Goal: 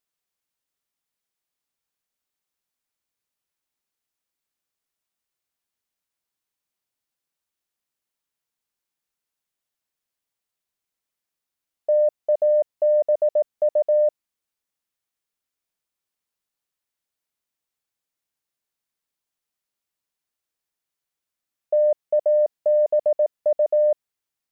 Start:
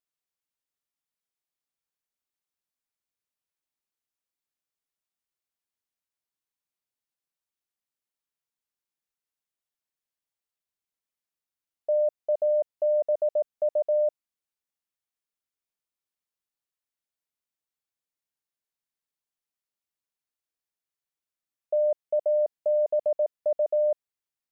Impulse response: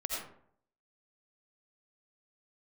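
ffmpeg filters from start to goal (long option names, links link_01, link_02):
-af "acontrast=35"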